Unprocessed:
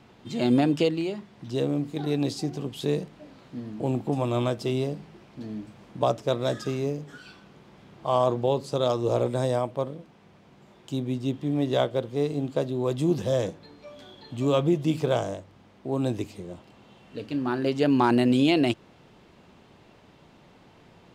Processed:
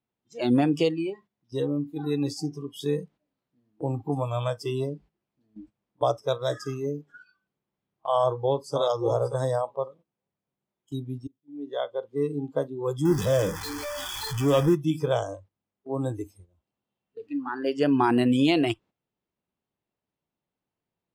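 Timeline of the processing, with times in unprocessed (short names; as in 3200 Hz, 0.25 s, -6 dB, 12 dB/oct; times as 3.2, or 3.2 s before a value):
8.17–8.78 echo throw 0.58 s, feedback 20%, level -7.5 dB
11.27–12.24 fade in linear
13.05–14.75 zero-crossing step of -26.5 dBFS
whole clip: spectral noise reduction 23 dB; gate -49 dBFS, range -11 dB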